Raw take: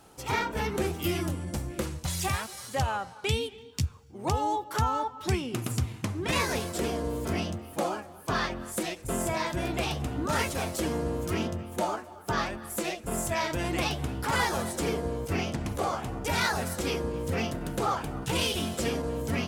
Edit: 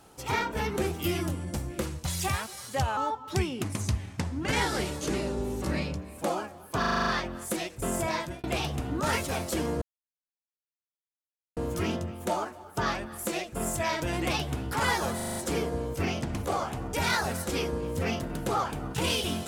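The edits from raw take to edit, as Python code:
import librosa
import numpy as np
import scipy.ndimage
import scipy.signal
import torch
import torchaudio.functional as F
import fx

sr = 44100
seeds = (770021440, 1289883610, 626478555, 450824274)

y = fx.edit(x, sr, fx.cut(start_s=2.97, length_s=1.93),
    fx.speed_span(start_s=5.57, length_s=2.19, speed=0.85),
    fx.stutter(start_s=8.33, slice_s=0.04, count=8),
    fx.fade_out_span(start_s=9.43, length_s=0.27),
    fx.insert_silence(at_s=11.08, length_s=1.75),
    fx.stutter(start_s=14.67, slice_s=0.04, count=6), tone=tone)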